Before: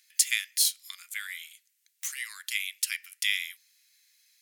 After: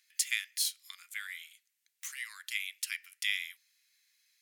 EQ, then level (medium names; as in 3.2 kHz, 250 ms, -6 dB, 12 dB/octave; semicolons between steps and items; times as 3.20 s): treble shelf 3.4 kHz -7 dB; -2.0 dB